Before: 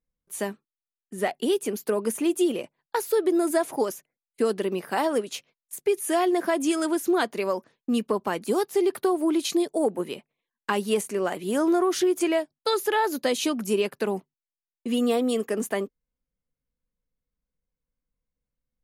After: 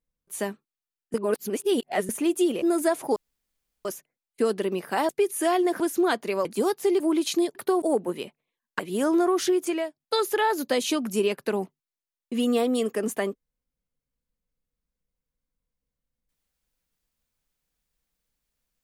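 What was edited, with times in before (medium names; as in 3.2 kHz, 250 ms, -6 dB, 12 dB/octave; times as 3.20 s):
1.14–2.09 s: reverse
2.62–3.31 s: delete
3.85 s: insert room tone 0.69 s
5.09–5.77 s: delete
6.48–6.90 s: delete
7.55–8.36 s: delete
8.91–9.18 s: move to 9.73 s
10.70–11.33 s: delete
12.01–12.54 s: fade out, to -9.5 dB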